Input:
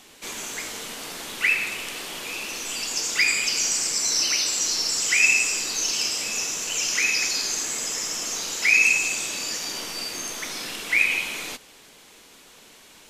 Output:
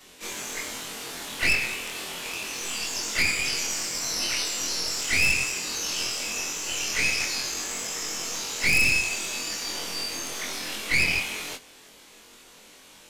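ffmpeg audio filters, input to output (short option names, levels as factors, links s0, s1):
-filter_complex "[0:a]afftfilt=real='re':imag='-im':win_size=2048:overlap=0.75,acrossover=split=4300[s0][s1];[s1]acompressor=threshold=0.02:ratio=4:attack=1:release=60[s2];[s0][s2]amix=inputs=2:normalize=0,aeval=exprs='0.266*(cos(1*acos(clip(val(0)/0.266,-1,1)))-cos(1*PI/2))+0.0473*(cos(5*acos(clip(val(0)/0.266,-1,1)))-cos(5*PI/2))+0.0668*(cos(6*acos(clip(val(0)/0.266,-1,1)))-cos(6*PI/2))':c=same,volume=0.794"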